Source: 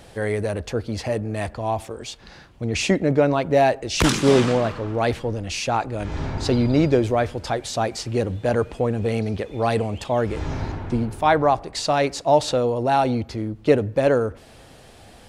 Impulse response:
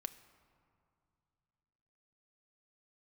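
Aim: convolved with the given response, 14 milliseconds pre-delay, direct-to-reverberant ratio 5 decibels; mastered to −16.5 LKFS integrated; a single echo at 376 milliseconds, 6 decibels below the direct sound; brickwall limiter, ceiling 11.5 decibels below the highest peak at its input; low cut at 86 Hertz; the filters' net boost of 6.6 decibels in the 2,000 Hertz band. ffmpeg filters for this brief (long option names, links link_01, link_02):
-filter_complex "[0:a]highpass=86,equalizer=frequency=2000:width_type=o:gain=8.5,alimiter=limit=-12.5dB:level=0:latency=1,aecho=1:1:376:0.501,asplit=2[link_01][link_02];[1:a]atrim=start_sample=2205,adelay=14[link_03];[link_02][link_03]afir=irnorm=-1:irlink=0,volume=-2dB[link_04];[link_01][link_04]amix=inputs=2:normalize=0,volume=6dB"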